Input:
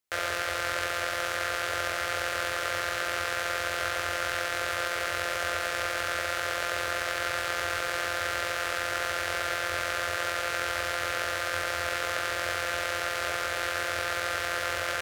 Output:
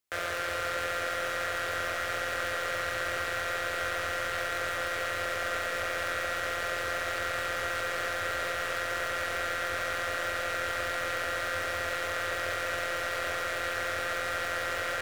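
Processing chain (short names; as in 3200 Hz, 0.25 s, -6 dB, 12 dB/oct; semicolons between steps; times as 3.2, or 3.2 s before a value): soft clip -23 dBFS, distortion -10 dB; darkening echo 0.204 s, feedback 81%, low-pass 4300 Hz, level -9 dB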